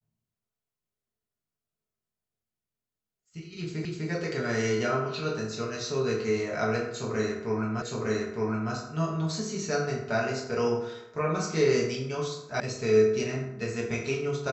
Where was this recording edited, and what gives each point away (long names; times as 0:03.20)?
0:03.85: the same again, the last 0.25 s
0:07.82: the same again, the last 0.91 s
0:12.60: cut off before it has died away